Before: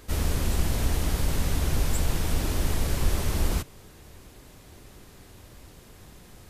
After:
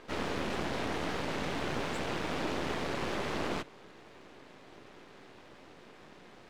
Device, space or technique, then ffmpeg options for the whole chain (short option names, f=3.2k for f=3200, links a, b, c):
crystal radio: -af "highpass=260,lowpass=3k,aeval=exprs='if(lt(val(0),0),0.251*val(0),val(0))':c=same,volume=4.5dB"